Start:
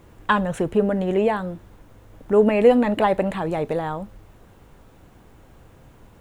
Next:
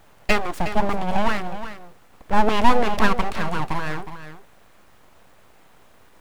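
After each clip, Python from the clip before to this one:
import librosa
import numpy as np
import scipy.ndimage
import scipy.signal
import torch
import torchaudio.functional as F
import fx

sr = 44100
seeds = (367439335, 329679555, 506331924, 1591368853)

y = scipy.signal.sosfilt(scipy.signal.butter(4, 190.0, 'highpass', fs=sr, output='sos'), x)
y = np.abs(y)
y = y + 10.0 ** (-11.5 / 20.0) * np.pad(y, (int(364 * sr / 1000.0), 0))[:len(y)]
y = y * librosa.db_to_amplitude(2.5)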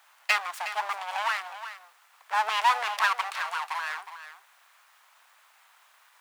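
y = scipy.signal.sosfilt(scipy.signal.butter(4, 930.0, 'highpass', fs=sr, output='sos'), x)
y = y * librosa.db_to_amplitude(-1.0)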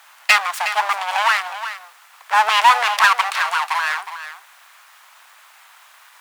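y = fx.fold_sine(x, sr, drive_db=3, ceiling_db=-8.0)
y = fx.low_shelf(y, sr, hz=340.0, db=-10.5)
y = y * librosa.db_to_amplitude(5.5)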